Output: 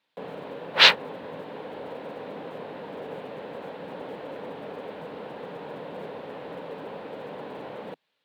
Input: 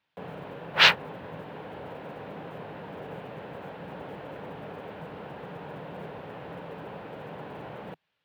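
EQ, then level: ten-band graphic EQ 250 Hz +11 dB, 500 Hz +11 dB, 1 kHz +7 dB, 2 kHz +6 dB, 4 kHz +12 dB, 8 kHz +7 dB, 16 kHz +9 dB; -9.5 dB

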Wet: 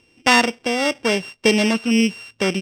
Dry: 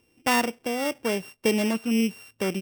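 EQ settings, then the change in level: distance through air 110 m; treble shelf 2.5 kHz +12 dB; +6.0 dB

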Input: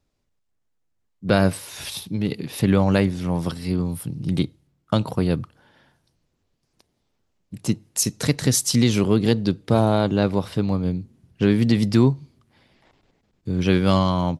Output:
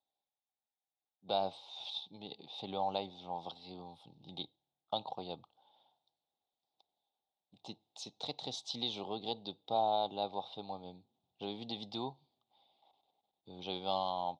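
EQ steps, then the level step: two resonant band-passes 1.7 kHz, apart 2.2 oct; distance through air 110 m; -1.0 dB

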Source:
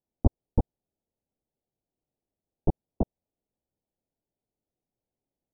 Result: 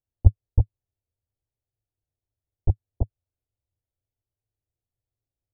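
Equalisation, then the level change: low-pass 1 kHz 12 dB/octave; resonant low shelf 140 Hz +10 dB, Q 3; -6.0 dB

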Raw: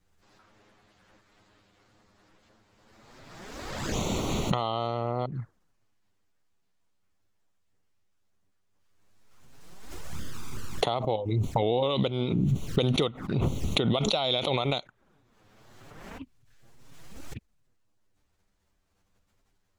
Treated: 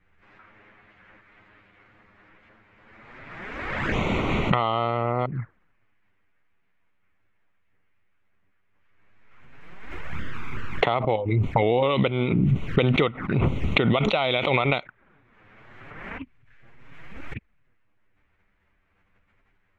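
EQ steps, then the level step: FFT filter 790 Hz 0 dB, 2.2 kHz +10 dB, 4.6 kHz -15 dB, 11 kHz -24 dB; +4.5 dB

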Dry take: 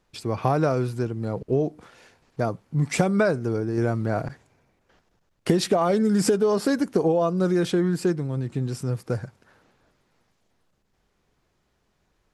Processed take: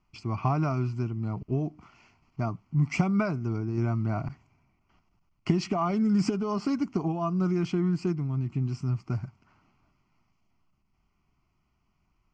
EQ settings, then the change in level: distance through air 140 m; peaking EQ 840 Hz -4.5 dB 0.33 oct; static phaser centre 2.5 kHz, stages 8; 0.0 dB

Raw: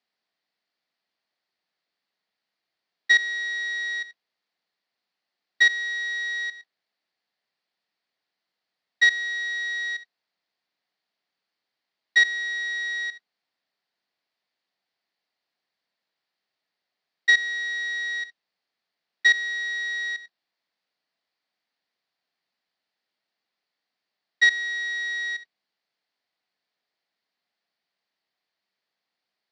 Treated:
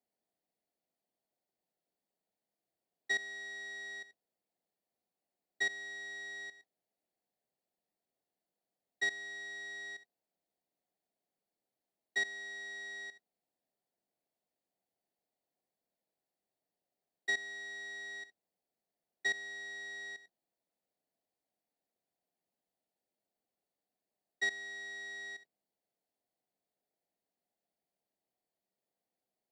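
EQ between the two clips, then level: high-order bell 2.4 kHz -16 dB 2.8 oct; 0.0 dB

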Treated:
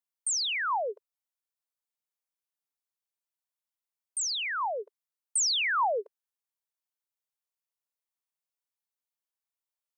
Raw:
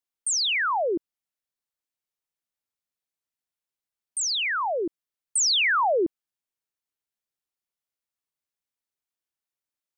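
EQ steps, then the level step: brick-wall FIR high-pass 410 Hz; peaking EQ 960 Hz +5 dB 0.78 oct; treble shelf 5.8 kHz +6 dB; -7.5 dB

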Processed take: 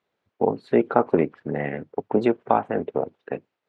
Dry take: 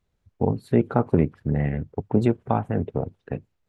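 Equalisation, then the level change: band-pass 360–3600 Hz; +5.5 dB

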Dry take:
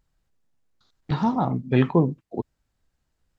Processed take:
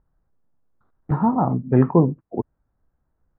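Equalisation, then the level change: low-pass 1.4 kHz 24 dB/octave; +3.5 dB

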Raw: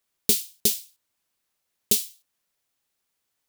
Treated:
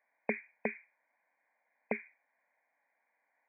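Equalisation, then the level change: high-pass 310 Hz 24 dB/octave; brick-wall FIR low-pass 2.5 kHz; static phaser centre 1.9 kHz, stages 8; +11.5 dB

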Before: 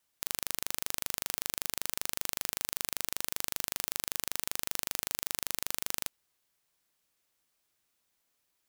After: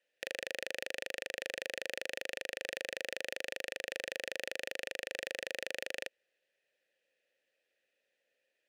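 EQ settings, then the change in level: vowel filter e; +14.5 dB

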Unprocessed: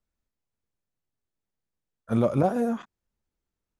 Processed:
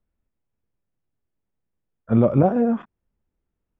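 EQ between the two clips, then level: Savitzky-Golay filter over 25 samples; tilt shelf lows +4 dB, about 770 Hz; +3.5 dB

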